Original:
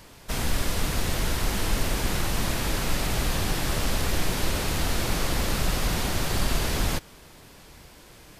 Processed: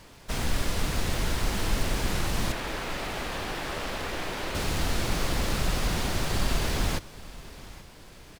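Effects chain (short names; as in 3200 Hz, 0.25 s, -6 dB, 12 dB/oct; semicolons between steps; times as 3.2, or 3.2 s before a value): median filter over 3 samples; 2.52–4.55 tone controls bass -11 dB, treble -8 dB; feedback echo 0.829 s, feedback 39%, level -19 dB; gain -1.5 dB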